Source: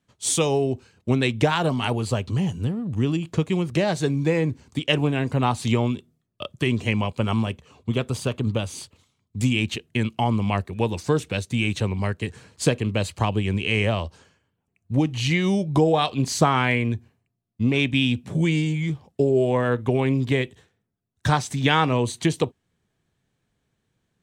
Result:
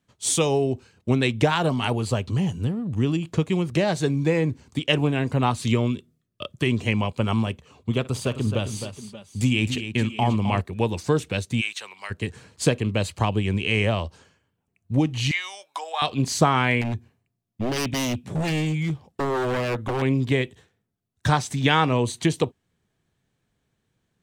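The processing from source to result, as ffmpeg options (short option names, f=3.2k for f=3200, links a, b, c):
-filter_complex "[0:a]asettb=1/sr,asplit=3[a][b][c];[a]atrim=end=5.504[d];[b]atrim=start=5.5:end=6.54,asetpts=PTS-STARTPTS,afade=t=in:d=0.004:c=qsin,afade=t=out:st=1.036:d=0.004:c=qsin,equalizer=f=810:w=4.3:g=-11[e];[c]atrim=start=6.536[f];[d][e]acrossfade=d=0.004:c1=hsin:c2=qsin[g];[g][f]acrossfade=d=0.004:c1=qsin:c2=hsin,asettb=1/sr,asplit=3[h][i][j];[h]atrim=end=7.994[k];[i]atrim=start=7.99:end=10.61,asetpts=PTS-STARTPTS,afade=t=in:d=0.004:c=qsin,afade=t=out:st=2.616:d=0.004:c=qsin,aecho=1:1:56|262|578|583:0.119|0.335|0.106|0.15,atrim=end_sample=115542[l];[j]atrim=start=10.606[m];[k][l]acrossfade=d=0.004:c1=hsin:c2=qsin[n];[n][m]acrossfade=d=0.004:c1=qsin:c2=hsin,asplit=3[o][p][q];[o]afade=t=out:st=11.6:d=0.02[r];[p]highpass=1.3k,afade=t=in:st=11.6:d=0.02,afade=t=out:st=12.1:d=0.02[s];[q]afade=t=in:st=12.1:d=0.02[t];[r][s][t]amix=inputs=3:normalize=0,asettb=1/sr,asplit=3[u][v][w];[u]atrim=end=15.314[x];[v]atrim=start=15.31:end=16.02,asetpts=PTS-STARTPTS,afade=t=in:d=0.004:c=qsin,afade=t=out:st=0.706:d=0.004:c=qsin,highpass=f=890:w=0.5412,highpass=f=890:w=1.3066[y];[w]atrim=start=16.016[z];[x][y]acrossfade=d=0.004:c1=hsin:c2=qsin[aa];[aa][z]acrossfade=d=0.004:c1=qsin:c2=hsin,asettb=1/sr,asplit=3[ab][ac][ad];[ab]atrim=end=16.814[ae];[ac]atrim=start=16.81:end=20.02,asetpts=PTS-STARTPTS,afade=t=in:d=0.004:c=qsin,afade=t=out:st=3.206:d=0.004:c=qsin,aeval=exprs='0.106*(abs(mod(val(0)/0.106+3,4)-2)-1)':c=same[af];[ad]atrim=start=20.016[ag];[ae][af]acrossfade=d=0.004:c1=hsin:c2=qsin[ah];[ah][ag]acrossfade=d=0.004:c1=qsin:c2=hsin"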